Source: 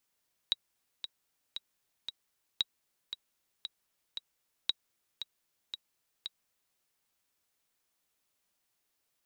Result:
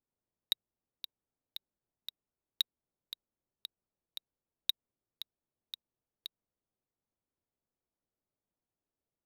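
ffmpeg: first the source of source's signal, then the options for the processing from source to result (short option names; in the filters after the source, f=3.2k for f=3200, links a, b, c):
-f lavfi -i "aevalsrc='pow(10,(-14.5-10*gte(mod(t,4*60/115),60/115))/20)*sin(2*PI*3840*mod(t,60/115))*exp(-6.91*mod(t,60/115)/0.03)':d=6.26:s=44100"
-af "adynamicsmooth=sensitivity=7:basefreq=660"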